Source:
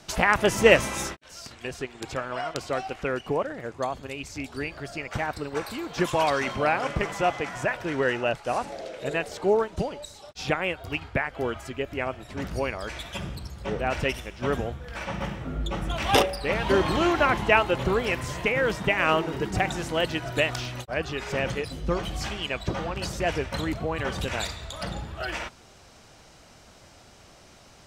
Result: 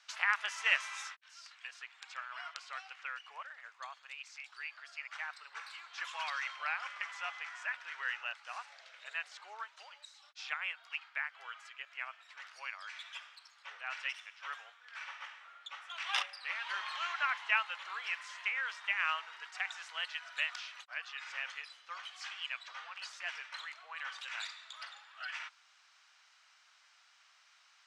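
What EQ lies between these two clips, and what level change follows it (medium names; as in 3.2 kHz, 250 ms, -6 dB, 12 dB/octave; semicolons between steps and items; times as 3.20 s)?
inverse Chebyshev high-pass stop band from 200 Hz, stop band 80 dB; distance through air 99 m; -6.5 dB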